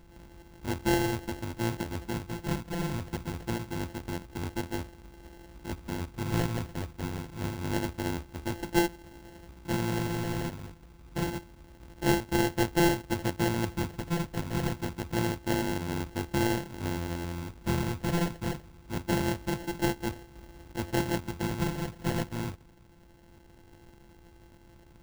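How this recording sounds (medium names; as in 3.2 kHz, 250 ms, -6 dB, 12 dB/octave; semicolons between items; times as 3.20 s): a buzz of ramps at a fixed pitch in blocks of 128 samples; phasing stages 8, 0.26 Hz, lowest notch 500–1200 Hz; aliases and images of a low sample rate 1.2 kHz, jitter 0%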